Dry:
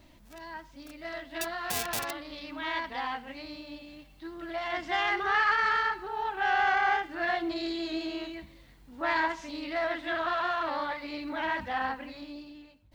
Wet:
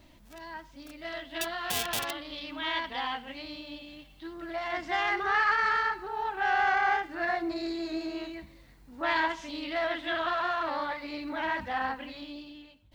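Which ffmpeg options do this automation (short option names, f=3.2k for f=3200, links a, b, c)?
-af "asetnsamples=n=441:p=0,asendcmd='1.02 equalizer g 8;4.33 equalizer g -3.5;7.25 equalizer g -13;8.16 equalizer g -5;9.03 equalizer g 6.5;10.3 equalizer g -1;11.99 equalizer g 9.5',equalizer=f=3.2k:t=o:w=0.4:g=1.5"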